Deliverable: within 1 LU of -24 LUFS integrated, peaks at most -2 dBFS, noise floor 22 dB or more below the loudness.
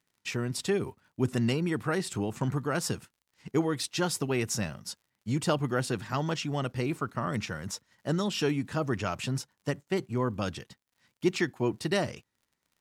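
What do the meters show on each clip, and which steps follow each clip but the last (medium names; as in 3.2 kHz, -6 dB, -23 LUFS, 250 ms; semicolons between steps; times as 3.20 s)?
tick rate 44 per s; loudness -31.0 LUFS; peak level -14.0 dBFS; loudness target -24.0 LUFS
-> de-click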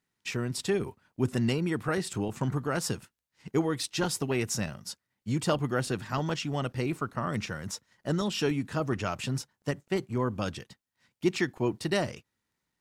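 tick rate 0 per s; loudness -31.0 LUFS; peak level -14.0 dBFS; loudness target -24.0 LUFS
-> trim +7 dB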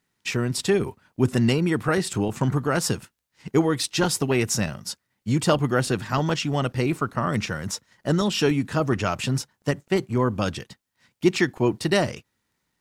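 loudness -24.0 LUFS; peak level -7.0 dBFS; noise floor -77 dBFS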